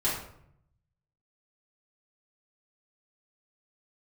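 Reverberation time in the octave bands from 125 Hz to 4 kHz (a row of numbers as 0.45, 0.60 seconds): 1.3, 0.90, 0.75, 0.65, 0.55, 0.40 seconds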